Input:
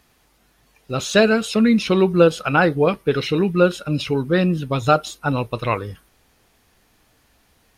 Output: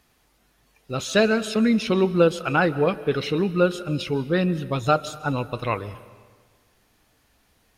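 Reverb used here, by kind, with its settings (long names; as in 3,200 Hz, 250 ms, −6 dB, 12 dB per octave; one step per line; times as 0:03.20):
comb and all-pass reverb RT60 1.5 s, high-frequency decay 0.8×, pre-delay 100 ms, DRR 16 dB
level −4 dB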